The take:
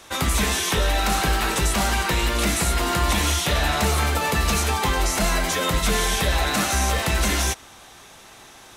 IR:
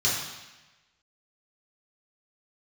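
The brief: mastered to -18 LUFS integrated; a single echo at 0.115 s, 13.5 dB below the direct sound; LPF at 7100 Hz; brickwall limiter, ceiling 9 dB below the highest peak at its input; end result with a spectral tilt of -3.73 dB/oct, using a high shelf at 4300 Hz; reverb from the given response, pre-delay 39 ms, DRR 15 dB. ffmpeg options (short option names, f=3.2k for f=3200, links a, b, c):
-filter_complex "[0:a]lowpass=7.1k,highshelf=f=4.3k:g=-4.5,alimiter=limit=-20dB:level=0:latency=1,aecho=1:1:115:0.211,asplit=2[a][b];[1:a]atrim=start_sample=2205,adelay=39[c];[b][c]afir=irnorm=-1:irlink=0,volume=-27dB[d];[a][d]amix=inputs=2:normalize=0,volume=10dB"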